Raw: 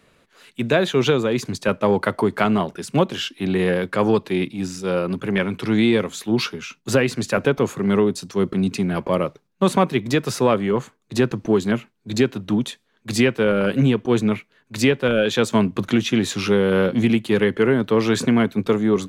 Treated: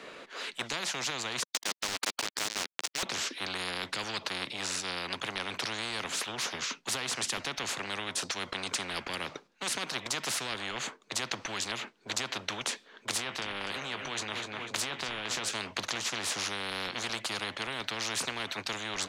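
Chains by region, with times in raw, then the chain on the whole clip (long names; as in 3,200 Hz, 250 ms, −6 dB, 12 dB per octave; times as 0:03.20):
0:01.43–0:03.03: high-pass filter 1,100 Hz + centre clipping without the shift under −27 dBFS
0:13.17–0:15.54: repeating echo 249 ms, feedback 41%, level −17 dB + downward compressor 4 to 1, threshold −23 dBFS + double-tracking delay 20 ms −11.5 dB
whole clip: three-way crossover with the lows and the highs turned down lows −21 dB, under 260 Hz, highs −18 dB, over 7,100 Hz; every bin compressed towards the loudest bin 10 to 1; level −7.5 dB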